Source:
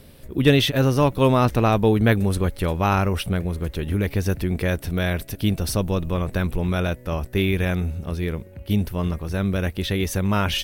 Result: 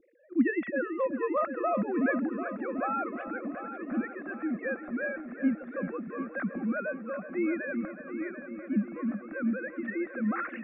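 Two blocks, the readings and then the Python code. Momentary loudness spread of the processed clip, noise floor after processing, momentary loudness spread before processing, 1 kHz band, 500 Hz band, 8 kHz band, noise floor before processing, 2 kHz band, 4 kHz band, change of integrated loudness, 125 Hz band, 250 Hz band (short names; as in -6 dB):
9 LU, -45 dBFS, 9 LU, -9.0 dB, -9.5 dB, under -40 dB, -45 dBFS, -6.0 dB, under -40 dB, -10.0 dB, -25.5 dB, -7.0 dB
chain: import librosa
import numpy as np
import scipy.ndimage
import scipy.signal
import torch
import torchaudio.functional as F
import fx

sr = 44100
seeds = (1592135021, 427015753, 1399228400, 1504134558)

p1 = fx.sine_speech(x, sr)
p2 = scipy.signal.sosfilt(scipy.signal.butter(4, 2300.0, 'lowpass', fs=sr, output='sos'), p1)
p3 = fx.fixed_phaser(p2, sr, hz=620.0, stages=8)
p4 = p3 + fx.echo_heads(p3, sr, ms=371, heads='first and second', feedback_pct=61, wet_db=-13.0, dry=0)
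y = p4 * librosa.db_to_amplitude(-7.5)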